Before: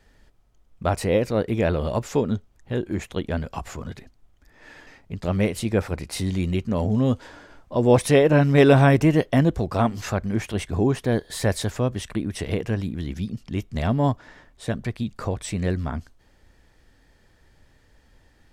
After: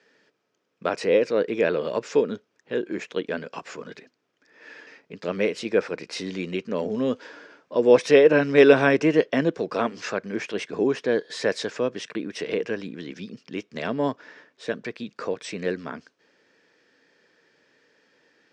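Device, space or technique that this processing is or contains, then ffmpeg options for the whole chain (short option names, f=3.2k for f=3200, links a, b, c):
television speaker: -af "highpass=f=200:w=0.5412,highpass=f=200:w=1.3066,equalizer=f=220:t=q:w=4:g=-5,equalizer=f=460:t=q:w=4:g=7,equalizer=f=770:t=q:w=4:g=-6,equalizer=f=1.6k:t=q:w=4:g=5,equalizer=f=2.5k:t=q:w=4:g=5,equalizer=f=5.3k:t=q:w=4:g=4,lowpass=f=6.5k:w=0.5412,lowpass=f=6.5k:w=1.3066,volume=-1.5dB"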